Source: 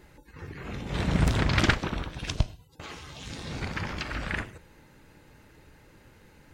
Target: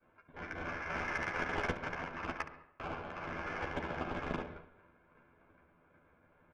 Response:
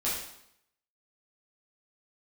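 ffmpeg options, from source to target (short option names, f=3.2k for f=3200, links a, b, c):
-filter_complex "[0:a]acrusher=samples=13:mix=1:aa=0.000001,highpass=240,acompressor=threshold=-41dB:ratio=3,agate=range=-33dB:threshold=-50dB:ratio=3:detection=peak,asplit=2[a][b];[1:a]atrim=start_sample=2205,adelay=111[c];[b][c]afir=irnorm=-1:irlink=0,volume=-18.5dB[d];[a][d]amix=inputs=2:normalize=0,aeval=exprs='val(0)*sin(2*PI*1900*n/s)':c=same,lowpass=2k,asoftclip=type=tanh:threshold=-32.5dB,adynamicsmooth=sensitivity=8:basefreq=1.1k,aecho=1:1:12|70:0.631|0.251,volume=11dB"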